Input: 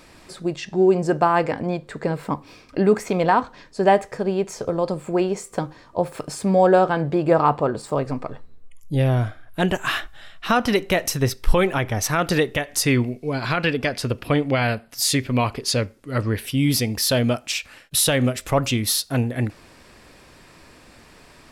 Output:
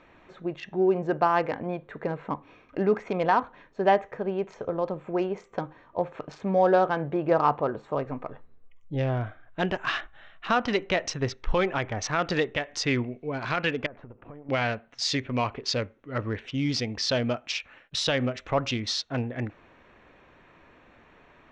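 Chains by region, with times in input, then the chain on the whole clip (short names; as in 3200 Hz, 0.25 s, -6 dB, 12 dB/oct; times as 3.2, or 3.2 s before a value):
13.86–14.49 half-wave gain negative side -7 dB + LPF 1300 Hz + compressor 16:1, threshold -31 dBFS
whole clip: Wiener smoothing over 9 samples; steep low-pass 6000 Hz 36 dB/oct; low shelf 320 Hz -6.5 dB; gain -3.5 dB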